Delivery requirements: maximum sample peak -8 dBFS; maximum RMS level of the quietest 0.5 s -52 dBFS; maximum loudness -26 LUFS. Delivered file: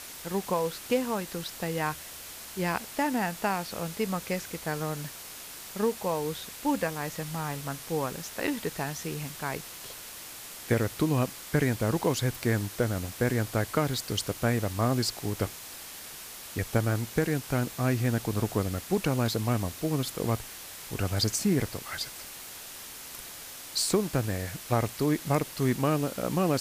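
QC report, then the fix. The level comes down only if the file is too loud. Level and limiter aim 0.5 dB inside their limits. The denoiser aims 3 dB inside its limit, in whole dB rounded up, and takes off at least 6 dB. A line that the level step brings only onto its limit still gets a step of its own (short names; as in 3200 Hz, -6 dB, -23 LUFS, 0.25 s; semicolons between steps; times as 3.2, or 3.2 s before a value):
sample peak -12.5 dBFS: OK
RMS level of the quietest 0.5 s -43 dBFS: fail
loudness -30.5 LUFS: OK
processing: denoiser 12 dB, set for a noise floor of -43 dBFS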